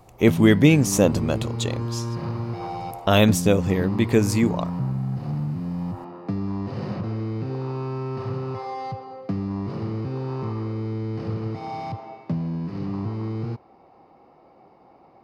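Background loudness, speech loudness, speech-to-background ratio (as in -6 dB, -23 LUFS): -29.5 LUFS, -20.0 LUFS, 9.5 dB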